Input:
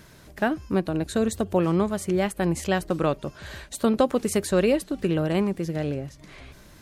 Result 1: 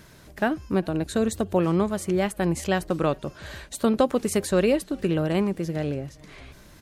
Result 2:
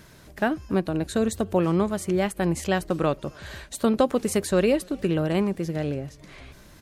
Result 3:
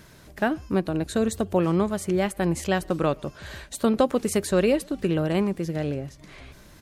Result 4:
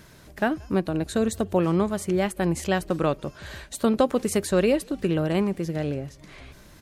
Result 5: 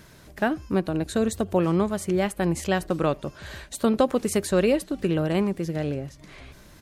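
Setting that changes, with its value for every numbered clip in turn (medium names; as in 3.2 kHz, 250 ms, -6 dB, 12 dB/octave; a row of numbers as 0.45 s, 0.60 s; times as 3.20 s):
speakerphone echo, time: 400 ms, 270 ms, 120 ms, 180 ms, 80 ms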